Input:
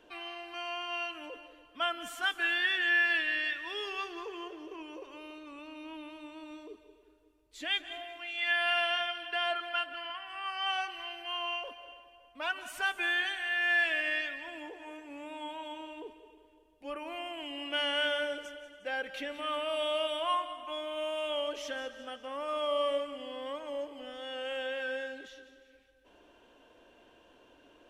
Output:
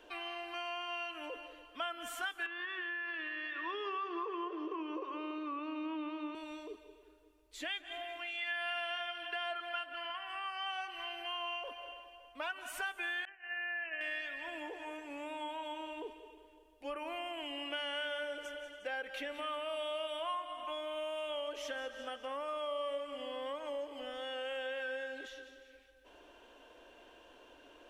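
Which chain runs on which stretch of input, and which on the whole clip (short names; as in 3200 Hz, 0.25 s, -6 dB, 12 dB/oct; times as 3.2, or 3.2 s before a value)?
2.46–6.35 three-band isolator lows -18 dB, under 330 Hz, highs -23 dB, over 4700 Hz + compressor 12:1, threshold -36 dBFS + small resonant body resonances 300/1100 Hz, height 16 dB, ringing for 25 ms
13.25–14.01 expander -26 dBFS + compressor, threshold -31 dBFS + brick-wall FIR low-pass 3100 Hz
whole clip: bell 150 Hz -14.5 dB 1.1 oct; compressor 3:1, threshold -41 dBFS; dynamic EQ 5000 Hz, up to -4 dB, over -56 dBFS, Q 0.84; gain +3 dB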